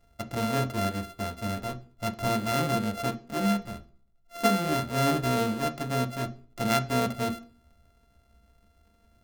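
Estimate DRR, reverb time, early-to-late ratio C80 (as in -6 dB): 6.5 dB, no single decay rate, 21.5 dB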